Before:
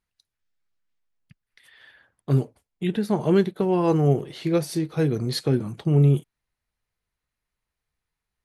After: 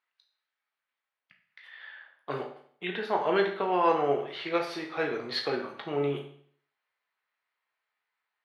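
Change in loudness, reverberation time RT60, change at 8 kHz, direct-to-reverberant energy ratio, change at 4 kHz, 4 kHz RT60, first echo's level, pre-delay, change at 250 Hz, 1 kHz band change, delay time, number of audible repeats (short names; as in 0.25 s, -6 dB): -7.0 dB, 0.55 s, under -15 dB, 2.0 dB, -0.5 dB, 0.55 s, none, 14 ms, -12.5 dB, +4.0 dB, none, none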